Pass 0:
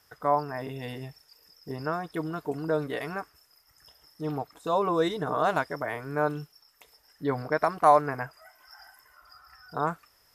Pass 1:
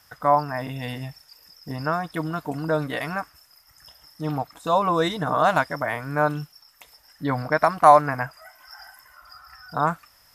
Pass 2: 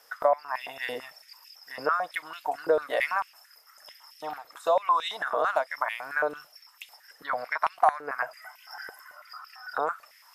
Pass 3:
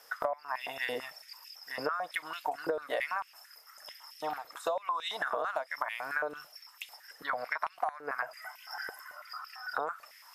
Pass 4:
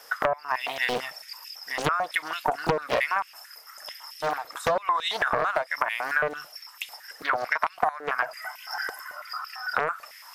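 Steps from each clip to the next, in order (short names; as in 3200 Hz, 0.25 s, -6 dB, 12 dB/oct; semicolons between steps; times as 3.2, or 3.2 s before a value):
bell 400 Hz -14.5 dB 0.38 oct; gain +7 dB
compressor 6:1, threshold -25 dBFS, peak gain reduction 16.5 dB; stepped high-pass 9 Hz 460–2700 Hz; gain -2 dB
compressor 12:1, threshold -30 dBFS, peak gain reduction 14.5 dB; gain +1 dB
Doppler distortion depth 1 ms; gain +8.5 dB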